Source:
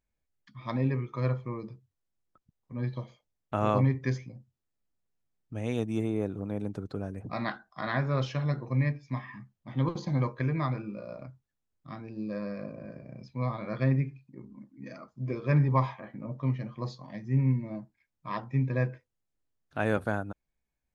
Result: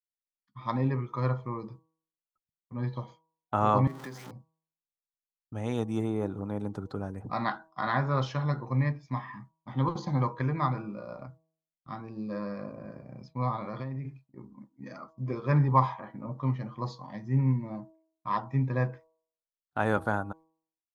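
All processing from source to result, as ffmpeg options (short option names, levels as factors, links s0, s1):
-filter_complex "[0:a]asettb=1/sr,asplit=3[s0][s1][s2];[s0]atrim=end=3.874[s3];[s1]atrim=start=3.87:end=4.31,asetpts=PTS-STARTPTS,afade=t=in:d=0.004:c=qsin,afade=t=out:st=0.436:d=0.004:c=qsin,aeval=exprs='val(0)+0.5*0.0178*sgn(val(0))':c=same,highpass=f=170:w=0.5412,highpass=f=170:w=1.3066,acompressor=threshold=0.01:ratio=3:attack=3.2:release=140:knee=1:detection=peak[s4];[s2]atrim=start=4.306[s5];[s3][s4]acrossfade=d=0.004:c1=hsin:c2=qsin[s6];[s6][s5]acrossfade=d=0.004:c1=qsin:c2=hsin,asettb=1/sr,asplit=3[s7][s8][s9];[s7]atrim=end=13.594[s10];[s8]atrim=start=13.59:end=14.05,asetpts=PTS-STARTPTS,afade=t=in:d=0.004:c=qsin,afade=t=out:st=0.456:d=0.004:c=qsin,equalizer=f=1500:t=o:w=0.21:g=-9,acompressor=threshold=0.0251:ratio=10:attack=3.2:release=140:knee=1:detection=peak[s11];[s9]atrim=start=14.046[s12];[s10][s11]acrossfade=d=0.004:c1=hsin:c2=qsin[s13];[s13][s12]acrossfade=d=0.004:c1=qsin:c2=hsin,superequalizer=9b=2.24:10b=1.78:12b=0.631,agate=range=0.0224:threshold=0.00562:ratio=3:detection=peak,bandreject=f=160.5:t=h:w=4,bandreject=f=321:t=h:w=4,bandreject=f=481.5:t=h:w=4,bandreject=f=642:t=h:w=4,bandreject=f=802.5:t=h:w=4,bandreject=f=963:t=h:w=4,bandreject=f=1123.5:t=h:w=4"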